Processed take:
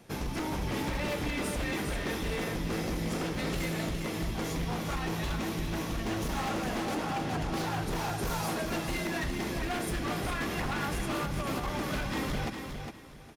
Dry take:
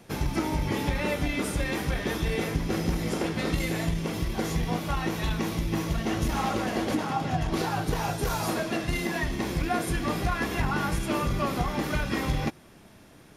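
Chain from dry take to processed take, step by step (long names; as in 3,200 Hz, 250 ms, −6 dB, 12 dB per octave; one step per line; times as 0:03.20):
0:11.22–0:11.78: compressor whose output falls as the input rises −28 dBFS, ratio −0.5
wave folding −24 dBFS
repeating echo 408 ms, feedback 25%, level −6.5 dB
level −3.5 dB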